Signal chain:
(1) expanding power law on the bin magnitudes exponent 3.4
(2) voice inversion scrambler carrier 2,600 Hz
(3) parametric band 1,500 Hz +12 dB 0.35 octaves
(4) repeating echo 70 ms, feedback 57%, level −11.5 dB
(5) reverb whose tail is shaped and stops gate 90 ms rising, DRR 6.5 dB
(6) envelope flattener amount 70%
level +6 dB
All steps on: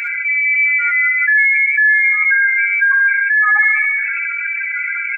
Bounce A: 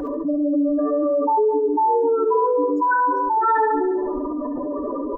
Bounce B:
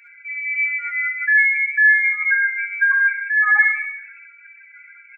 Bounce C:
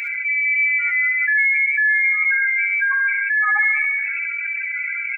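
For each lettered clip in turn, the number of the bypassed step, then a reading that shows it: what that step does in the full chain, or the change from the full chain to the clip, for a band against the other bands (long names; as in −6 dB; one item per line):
2, change in integrated loudness −8.0 LU
6, change in crest factor +5.0 dB
3, change in integrated loudness −4.5 LU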